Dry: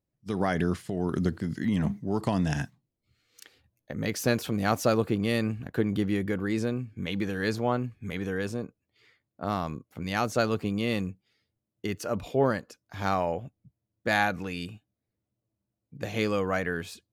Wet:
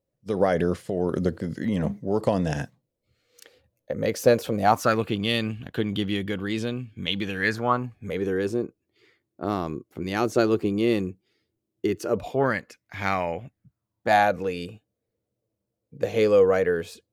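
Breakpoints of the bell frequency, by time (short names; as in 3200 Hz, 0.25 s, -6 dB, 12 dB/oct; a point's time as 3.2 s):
bell +14 dB 0.58 oct
4.56 s 520 Hz
5.11 s 3200 Hz
7.23 s 3200 Hz
8.28 s 360 Hz
12.09 s 360 Hz
12.53 s 2100 Hz
13.45 s 2100 Hz
14.4 s 480 Hz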